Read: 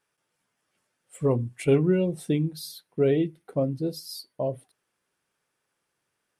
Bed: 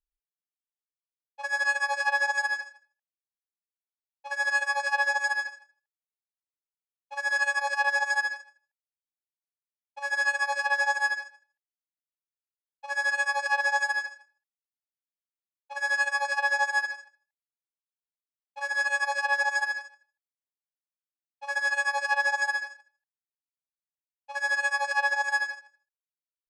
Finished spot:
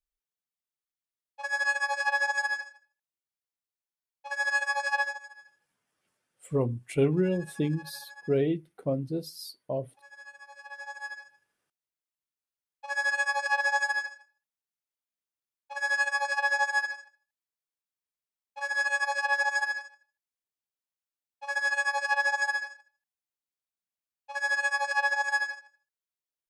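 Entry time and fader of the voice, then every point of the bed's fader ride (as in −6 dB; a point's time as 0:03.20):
5.30 s, −3.5 dB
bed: 0:05.00 −1.5 dB
0:05.29 −22.5 dB
0:10.45 −22.5 dB
0:11.77 −1 dB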